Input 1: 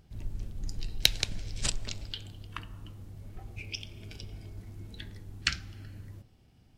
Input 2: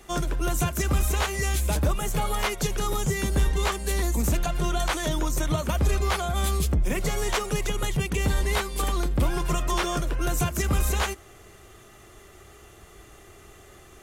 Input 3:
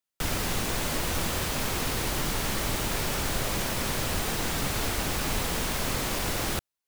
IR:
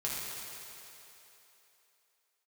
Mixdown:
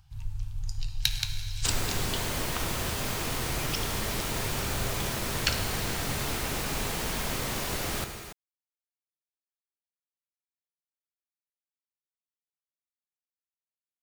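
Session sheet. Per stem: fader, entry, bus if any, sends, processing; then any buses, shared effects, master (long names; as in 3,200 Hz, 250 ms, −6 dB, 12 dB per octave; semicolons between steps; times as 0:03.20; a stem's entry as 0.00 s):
+0.5 dB, 0.00 s, send −8 dB, parametric band 2,000 Hz −6 dB 0.34 octaves; soft clipping −13 dBFS, distortion −12 dB; elliptic band-stop filter 130–850 Hz
muted
−6.0 dB, 1.45 s, send −6.5 dB, no processing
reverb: on, RT60 3.2 s, pre-delay 4 ms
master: no processing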